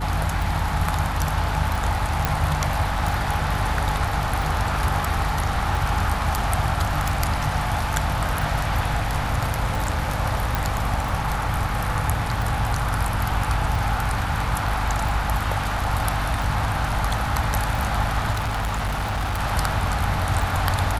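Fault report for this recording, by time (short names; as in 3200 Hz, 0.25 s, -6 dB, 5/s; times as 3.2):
hum 50 Hz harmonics 6 -28 dBFS
tick 45 rpm
2.25 pop
10.55 pop
18.32–19.41 clipped -21 dBFS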